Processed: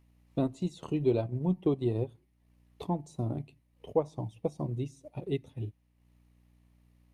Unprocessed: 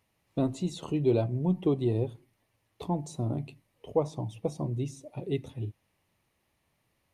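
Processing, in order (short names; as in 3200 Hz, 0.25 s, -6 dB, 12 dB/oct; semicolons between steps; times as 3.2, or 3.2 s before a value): hum 60 Hz, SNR 29 dB; transient shaper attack +2 dB, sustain -7 dB; gain -2.5 dB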